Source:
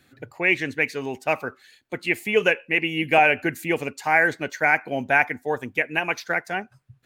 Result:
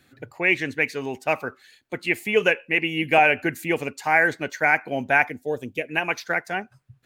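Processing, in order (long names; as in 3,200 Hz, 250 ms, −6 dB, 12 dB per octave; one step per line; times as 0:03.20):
0:05.30–0:05.89: flat-topped bell 1,300 Hz −12.5 dB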